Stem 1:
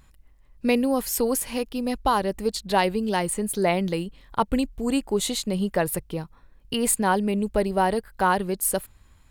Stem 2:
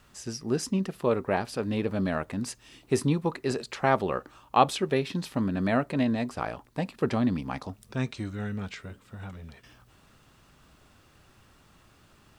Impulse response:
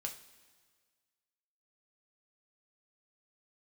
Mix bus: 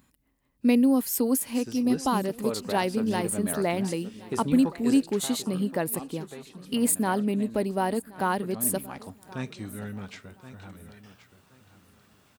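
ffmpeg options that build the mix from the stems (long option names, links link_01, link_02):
-filter_complex "[0:a]equalizer=frequency=260:width_type=o:width=0.59:gain=10.5,volume=-6dB,asplit=2[link_01][link_02];[link_02]volume=-21dB[link_03];[1:a]alimiter=limit=-15.5dB:level=0:latency=1:release=202,adelay=1400,volume=5.5dB,afade=type=out:start_time=4.86:duration=0.57:silence=0.298538,afade=type=in:start_time=8.43:duration=0.76:silence=0.251189,asplit=3[link_04][link_05][link_06];[link_05]volume=-10.5dB[link_07];[link_06]volume=-12dB[link_08];[2:a]atrim=start_sample=2205[link_09];[link_07][link_09]afir=irnorm=-1:irlink=0[link_10];[link_03][link_08]amix=inputs=2:normalize=0,aecho=0:1:1075|2150|3225|4300:1|0.24|0.0576|0.0138[link_11];[link_01][link_04][link_10][link_11]amix=inputs=4:normalize=0,highpass=97,highshelf=frequency=11000:gain=9.5"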